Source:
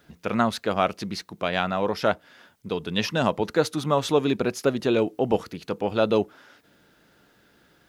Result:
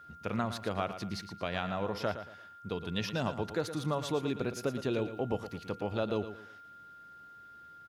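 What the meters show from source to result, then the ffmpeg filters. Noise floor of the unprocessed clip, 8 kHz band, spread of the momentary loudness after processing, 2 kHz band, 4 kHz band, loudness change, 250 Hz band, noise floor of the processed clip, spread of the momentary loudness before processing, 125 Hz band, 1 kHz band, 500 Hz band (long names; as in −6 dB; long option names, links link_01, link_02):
−61 dBFS, −9.0 dB, 18 LU, −10.0 dB, −10.0 dB, −10.0 dB, −9.5 dB, −53 dBFS, 10 LU, −5.5 dB, −10.5 dB, −11.0 dB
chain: -filter_complex "[0:a]equalizer=frequency=92:width=1.4:gain=9,acompressor=threshold=-23dB:ratio=2,asplit=2[link_01][link_02];[link_02]aecho=0:1:114|228|342:0.282|0.0874|0.0271[link_03];[link_01][link_03]amix=inputs=2:normalize=0,aeval=exprs='val(0)+0.00794*sin(2*PI*1400*n/s)':channel_layout=same,volume=-8dB"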